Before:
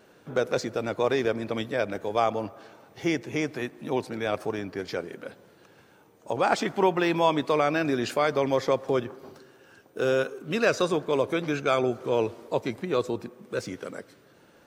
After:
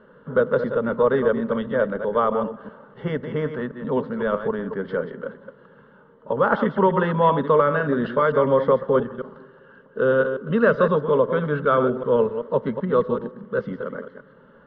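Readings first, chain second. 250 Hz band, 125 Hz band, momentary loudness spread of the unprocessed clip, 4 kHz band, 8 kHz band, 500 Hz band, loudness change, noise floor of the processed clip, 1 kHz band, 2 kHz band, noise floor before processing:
+4.5 dB, +7.5 dB, 11 LU, n/a, under -30 dB, +6.0 dB, +5.5 dB, -52 dBFS, +5.0 dB, +3.5 dB, -57 dBFS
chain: reverse delay 0.128 s, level -8.5 dB; elliptic low-pass 3000 Hz, stop band 70 dB; low shelf 170 Hz +7 dB; fixed phaser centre 490 Hz, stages 8; gain +7.5 dB

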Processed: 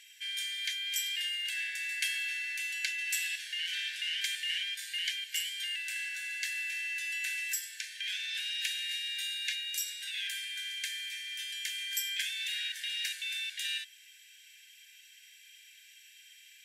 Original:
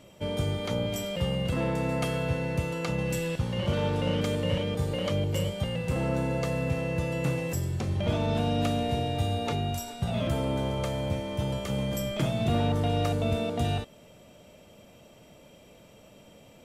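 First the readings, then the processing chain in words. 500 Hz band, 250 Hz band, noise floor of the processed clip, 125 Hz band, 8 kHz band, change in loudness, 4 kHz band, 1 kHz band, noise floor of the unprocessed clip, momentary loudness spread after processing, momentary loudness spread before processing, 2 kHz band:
under -40 dB, under -40 dB, -57 dBFS, under -40 dB, +5.5 dB, -4.5 dB, +5.5 dB, under -40 dB, -54 dBFS, 5 LU, 4 LU, +5.0 dB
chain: brick-wall FIR high-pass 1500 Hz; gain +5.5 dB

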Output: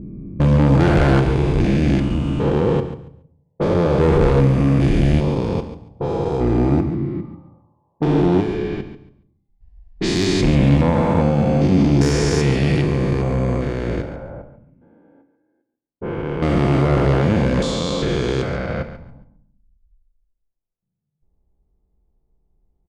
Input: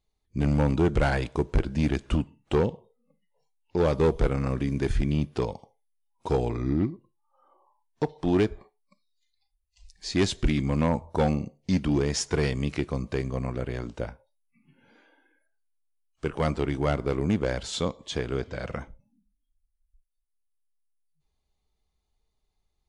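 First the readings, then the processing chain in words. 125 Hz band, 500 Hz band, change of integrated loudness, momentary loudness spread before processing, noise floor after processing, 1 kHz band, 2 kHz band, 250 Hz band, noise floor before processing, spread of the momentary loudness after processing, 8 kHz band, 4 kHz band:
+11.5 dB, +8.5 dB, +9.5 dB, 10 LU, -74 dBFS, +9.0 dB, +8.0 dB, +10.0 dB, -77 dBFS, 12 LU, +4.5 dB, +7.5 dB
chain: stepped spectrum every 0.4 s; high shelf 5500 Hz -4 dB; added harmonics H 5 -11 dB, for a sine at -14 dBFS; low-pass opened by the level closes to 480 Hz, open at -23 dBFS; on a send: feedback echo 0.14 s, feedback 21%, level -12 dB; on the sum: shoebox room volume 800 m³, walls furnished, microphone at 0.81 m; gain +6.5 dB

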